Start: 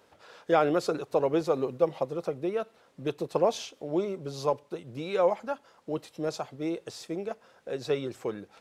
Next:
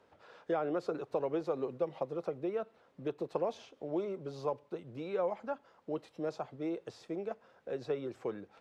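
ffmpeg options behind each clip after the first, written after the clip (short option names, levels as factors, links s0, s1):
-filter_complex "[0:a]aemphasis=mode=reproduction:type=75kf,acrossover=split=240|1700[s0][s1][s2];[s0]acompressor=threshold=0.00501:ratio=4[s3];[s1]acompressor=threshold=0.0447:ratio=4[s4];[s2]acompressor=threshold=0.00282:ratio=4[s5];[s3][s4][s5]amix=inputs=3:normalize=0,volume=0.668"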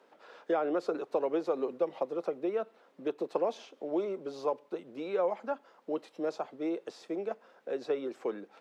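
-af "highpass=f=220:w=0.5412,highpass=f=220:w=1.3066,volume=1.5"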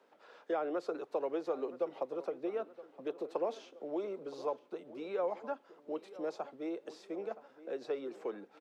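-filter_complex "[0:a]acrossover=split=270|3100[s0][s1][s2];[s0]alimiter=level_in=10:limit=0.0631:level=0:latency=1:release=114,volume=0.1[s3];[s3][s1][s2]amix=inputs=3:normalize=0,asplit=2[s4][s5];[s5]adelay=970,lowpass=f=3100:p=1,volume=0.158,asplit=2[s6][s7];[s7]adelay=970,lowpass=f=3100:p=1,volume=0.51,asplit=2[s8][s9];[s9]adelay=970,lowpass=f=3100:p=1,volume=0.51,asplit=2[s10][s11];[s11]adelay=970,lowpass=f=3100:p=1,volume=0.51,asplit=2[s12][s13];[s13]adelay=970,lowpass=f=3100:p=1,volume=0.51[s14];[s4][s6][s8][s10][s12][s14]amix=inputs=6:normalize=0,volume=0.596"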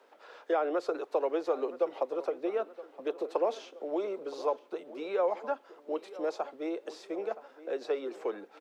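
-af "highpass=330,volume=2.11"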